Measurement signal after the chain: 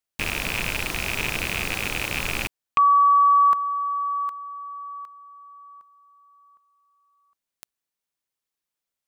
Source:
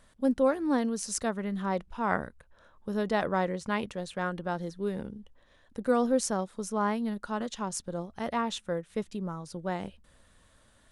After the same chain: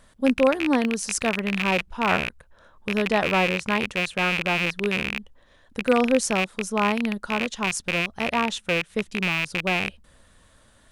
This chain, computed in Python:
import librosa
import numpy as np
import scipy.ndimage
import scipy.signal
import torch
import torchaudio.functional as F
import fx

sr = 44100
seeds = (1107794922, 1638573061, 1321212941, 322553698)

y = fx.rattle_buzz(x, sr, strikes_db=-43.0, level_db=-18.0)
y = y * 10.0 ** (5.5 / 20.0)